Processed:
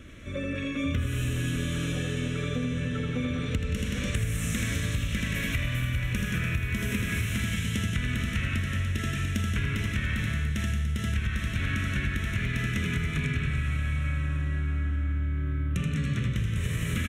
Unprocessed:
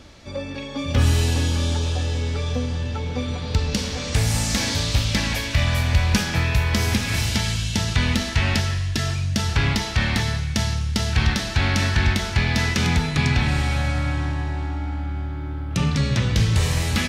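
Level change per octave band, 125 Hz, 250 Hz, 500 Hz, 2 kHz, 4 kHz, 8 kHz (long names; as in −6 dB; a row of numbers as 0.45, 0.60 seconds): −6.5, −5.0, −8.5, −6.0, −12.0, −11.0 decibels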